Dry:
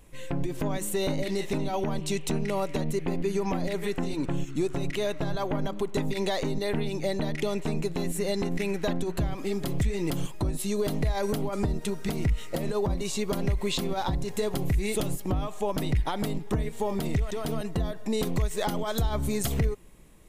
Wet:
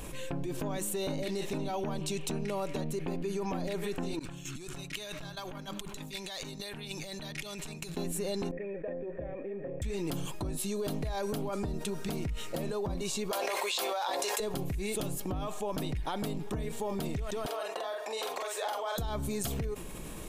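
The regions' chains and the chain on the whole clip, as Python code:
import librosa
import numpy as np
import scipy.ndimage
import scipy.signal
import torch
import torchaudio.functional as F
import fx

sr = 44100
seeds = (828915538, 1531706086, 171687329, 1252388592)

y = fx.chain(x, sr, fx.over_compress(threshold_db=-33.0, ratio=-0.5),
    fx.tone_stack(knobs='5-5-5'), at=(4.19, 7.97))
y = fx.chain(y, sr, fx.median_filter(points=15),
    fx.formant_cascade(vowel='e'), at=(8.51, 9.82))
y = fx.chain(y, sr, fx.highpass(hz=540.0, slope=24),
    fx.doubler(ms=14.0, db=-11.0),
    fx.env_flatten(amount_pct=100), at=(13.31, 14.4))
y = fx.chain(y, sr, fx.highpass(hz=550.0, slope=24),
    fx.high_shelf(hz=4600.0, db=-9.0),
    fx.doubler(ms=45.0, db=-3.0), at=(17.46, 18.98))
y = fx.low_shelf(y, sr, hz=130.0, db=-5.0)
y = fx.notch(y, sr, hz=2000.0, q=9.5)
y = fx.env_flatten(y, sr, amount_pct=70)
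y = y * librosa.db_to_amplitude(-8.0)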